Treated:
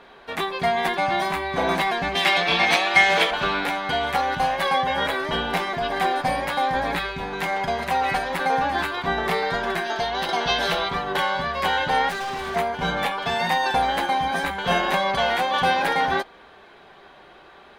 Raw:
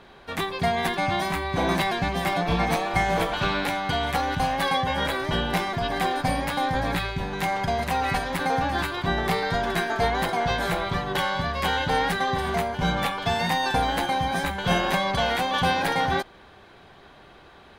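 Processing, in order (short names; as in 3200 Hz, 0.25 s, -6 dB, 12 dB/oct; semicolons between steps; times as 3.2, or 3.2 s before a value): 2.15–3.31 weighting filter D; 9.85–10.88 spectral gain 2600–6500 Hz +8 dB; tone controls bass -10 dB, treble -5 dB; 9.72–10.29 compressor, threshold -25 dBFS, peak gain reduction 7 dB; 12.09–12.56 overloaded stage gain 30 dB; flange 0.55 Hz, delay 4.2 ms, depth 1.4 ms, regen -58%; gain +7 dB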